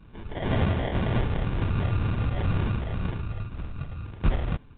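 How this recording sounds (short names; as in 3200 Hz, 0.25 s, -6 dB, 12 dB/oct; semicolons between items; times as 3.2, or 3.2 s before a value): phasing stages 8, 2 Hz, lowest notch 350–1400 Hz; aliases and images of a low sample rate 1300 Hz, jitter 0%; A-law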